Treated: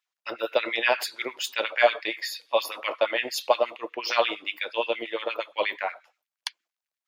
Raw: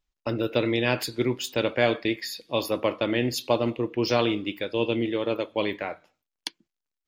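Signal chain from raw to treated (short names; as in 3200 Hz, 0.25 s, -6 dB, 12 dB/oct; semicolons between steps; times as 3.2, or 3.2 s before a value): LFO high-pass sine 8.5 Hz 590–2200 Hz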